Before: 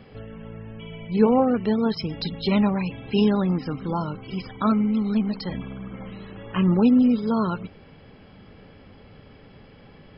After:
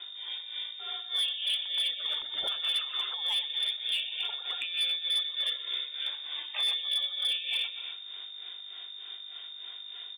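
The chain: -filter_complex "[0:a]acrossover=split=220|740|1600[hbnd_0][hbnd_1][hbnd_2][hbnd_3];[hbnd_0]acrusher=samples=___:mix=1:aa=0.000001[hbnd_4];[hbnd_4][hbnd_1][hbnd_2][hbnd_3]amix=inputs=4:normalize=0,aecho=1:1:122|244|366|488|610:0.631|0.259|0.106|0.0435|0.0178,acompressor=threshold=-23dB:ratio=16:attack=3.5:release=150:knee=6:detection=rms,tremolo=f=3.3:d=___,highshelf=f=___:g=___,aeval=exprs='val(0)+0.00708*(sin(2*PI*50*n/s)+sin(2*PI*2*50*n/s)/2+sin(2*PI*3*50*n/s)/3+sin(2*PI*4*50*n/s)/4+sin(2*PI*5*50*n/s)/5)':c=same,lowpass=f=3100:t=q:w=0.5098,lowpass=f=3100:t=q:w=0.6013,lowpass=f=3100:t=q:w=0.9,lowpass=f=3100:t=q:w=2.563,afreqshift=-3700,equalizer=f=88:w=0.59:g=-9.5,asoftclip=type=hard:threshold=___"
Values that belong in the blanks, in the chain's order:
26, 0.73, 2300, 4, -24.5dB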